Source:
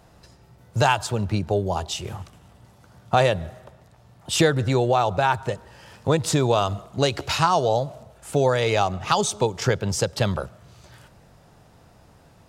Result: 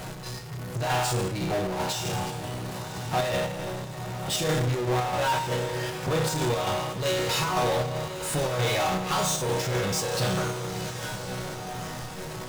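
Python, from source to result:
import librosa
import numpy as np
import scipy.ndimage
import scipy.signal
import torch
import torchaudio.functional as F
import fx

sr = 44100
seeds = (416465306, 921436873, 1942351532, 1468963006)

p1 = fx.resonator_bank(x, sr, root=47, chord='major', decay_s=0.65)
p2 = fx.step_gate(p1, sr, bpm=117, pattern='x.x.xx.xxx.x', floor_db=-12.0, edge_ms=4.5)
p3 = fx.power_curve(p2, sr, exponent=0.35)
p4 = p3 + fx.echo_diffused(p3, sr, ms=1082, feedback_pct=47, wet_db=-10.5, dry=0)
y = p4 * librosa.db_to_amplitude(5.5)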